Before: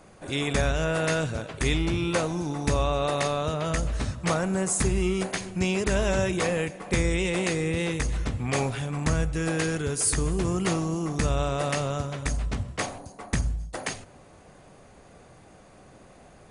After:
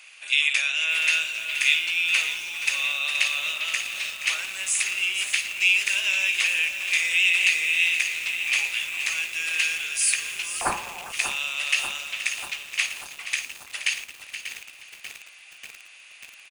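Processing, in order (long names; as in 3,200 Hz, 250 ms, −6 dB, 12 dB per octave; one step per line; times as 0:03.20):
in parallel at +1.5 dB: downward compressor 5 to 1, threshold −40 dBFS, peak gain reduction 18.5 dB
on the sum: high-pass with resonance 2,600 Hz, resonance Q 5.5
repeating echo 475 ms, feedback 25%, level −11.5 dB
on a send at −9.5 dB: convolution reverb RT60 0.45 s, pre-delay 5 ms
0:10.61–0:11.12: on the sum: voice inversion scrambler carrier 3,600 Hz
feedback echo at a low word length 590 ms, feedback 80%, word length 6 bits, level −10 dB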